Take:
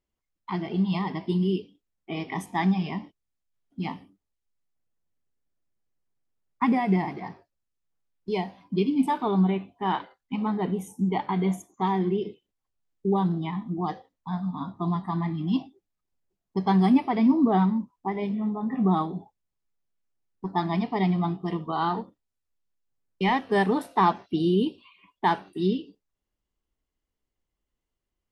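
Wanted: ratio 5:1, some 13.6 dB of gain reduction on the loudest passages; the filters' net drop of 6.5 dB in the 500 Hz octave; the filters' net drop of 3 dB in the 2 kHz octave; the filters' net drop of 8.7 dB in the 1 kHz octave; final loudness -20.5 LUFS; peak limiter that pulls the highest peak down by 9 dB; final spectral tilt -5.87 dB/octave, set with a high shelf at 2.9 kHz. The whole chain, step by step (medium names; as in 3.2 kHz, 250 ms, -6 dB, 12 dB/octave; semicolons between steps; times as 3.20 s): peaking EQ 500 Hz -8.5 dB; peaking EQ 1 kHz -8 dB; peaking EQ 2 kHz -4 dB; treble shelf 2.9 kHz +9 dB; compression 5:1, threshold -34 dBFS; trim +20.5 dB; peak limiter -11.5 dBFS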